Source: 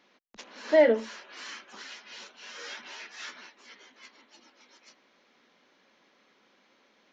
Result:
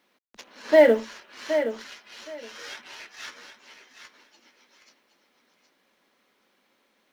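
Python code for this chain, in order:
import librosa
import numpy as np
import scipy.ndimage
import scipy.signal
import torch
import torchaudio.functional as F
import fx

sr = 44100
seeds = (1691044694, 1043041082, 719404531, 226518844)

p1 = fx.law_mismatch(x, sr, coded='A')
p2 = p1 + fx.echo_feedback(p1, sr, ms=769, feedback_pct=17, wet_db=-9.5, dry=0)
y = F.gain(torch.from_numpy(p2), 5.0).numpy()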